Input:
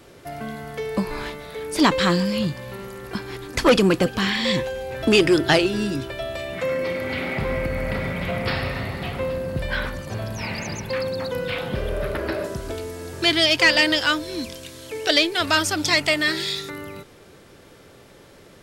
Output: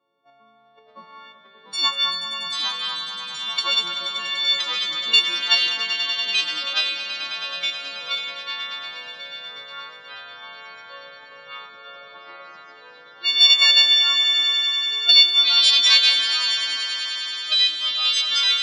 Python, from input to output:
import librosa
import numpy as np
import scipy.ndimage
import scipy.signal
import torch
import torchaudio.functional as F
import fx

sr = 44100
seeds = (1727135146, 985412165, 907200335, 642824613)

p1 = fx.freq_snap(x, sr, grid_st=4)
p2 = np.diff(p1, prepend=0.0)
p3 = fx.level_steps(p2, sr, step_db=18)
p4 = p2 + F.gain(torch.from_numpy(p3), -2.0).numpy()
p5 = fx.env_lowpass(p4, sr, base_hz=510.0, full_db=-14.0)
p6 = p5 + fx.echo_swell(p5, sr, ms=96, loudest=5, wet_db=-12.5, dry=0)
p7 = fx.echo_pitch(p6, sr, ms=580, semitones=-2, count=2, db_per_echo=-6.0)
p8 = fx.cabinet(p7, sr, low_hz=120.0, low_slope=24, high_hz=4900.0, hz=(390.0, 1100.0, 1800.0, 3500.0), db=(-5, 9, -6, 8))
y = F.gain(torch.from_numpy(p8), -2.5).numpy()